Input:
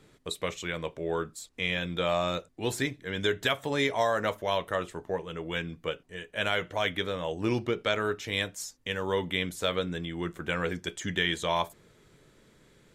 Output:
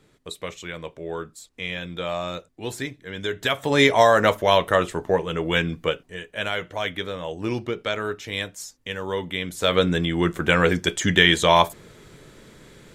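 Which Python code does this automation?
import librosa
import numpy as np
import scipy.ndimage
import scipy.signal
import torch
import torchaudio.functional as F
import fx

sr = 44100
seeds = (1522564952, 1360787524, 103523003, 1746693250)

y = fx.gain(x, sr, db=fx.line((3.27, -0.5), (3.82, 11.0), (5.74, 11.0), (6.46, 1.5), (9.43, 1.5), (9.83, 12.0)))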